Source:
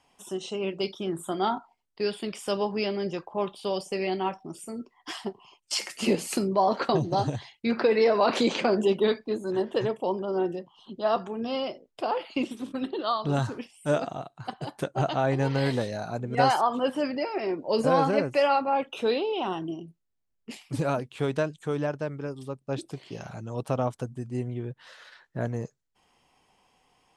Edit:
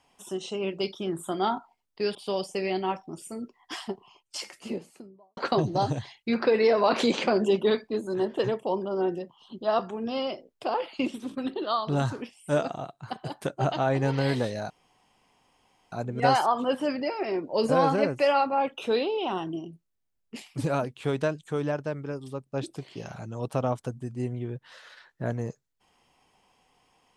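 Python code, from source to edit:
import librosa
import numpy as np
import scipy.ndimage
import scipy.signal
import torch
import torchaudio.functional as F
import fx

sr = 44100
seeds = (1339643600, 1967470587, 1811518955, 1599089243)

y = fx.studio_fade_out(x, sr, start_s=5.16, length_s=1.58)
y = fx.edit(y, sr, fx.cut(start_s=2.15, length_s=1.37),
    fx.insert_room_tone(at_s=16.07, length_s=1.22), tone=tone)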